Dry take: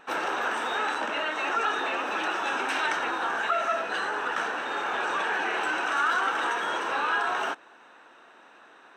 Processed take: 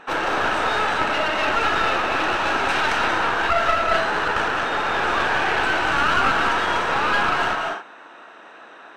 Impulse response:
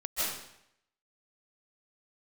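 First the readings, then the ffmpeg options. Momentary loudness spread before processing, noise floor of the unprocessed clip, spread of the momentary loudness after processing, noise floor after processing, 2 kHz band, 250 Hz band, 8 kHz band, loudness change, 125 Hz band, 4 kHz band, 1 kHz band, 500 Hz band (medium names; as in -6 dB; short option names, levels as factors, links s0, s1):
4 LU, -54 dBFS, 3 LU, -44 dBFS, +7.0 dB, +9.0 dB, +5.0 dB, +7.0 dB, no reading, +8.0 dB, +7.0 dB, +8.0 dB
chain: -filter_complex "[0:a]asplit=2[s0][s1];[1:a]atrim=start_sample=2205,afade=t=out:st=0.31:d=0.01,atrim=end_sample=14112,adelay=28[s2];[s1][s2]afir=irnorm=-1:irlink=0,volume=0.335[s3];[s0][s3]amix=inputs=2:normalize=0,aeval=exprs='clip(val(0),-1,0.0282)':c=same,highshelf=f=8000:g=-12,volume=2.51"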